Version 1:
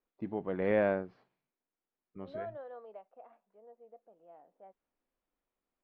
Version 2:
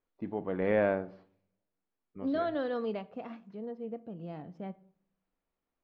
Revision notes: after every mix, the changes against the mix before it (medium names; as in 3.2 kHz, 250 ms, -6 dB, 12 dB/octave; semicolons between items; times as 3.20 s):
second voice: remove ladder band-pass 790 Hz, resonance 40%; reverb: on, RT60 0.55 s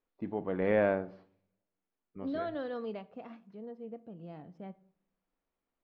second voice -4.5 dB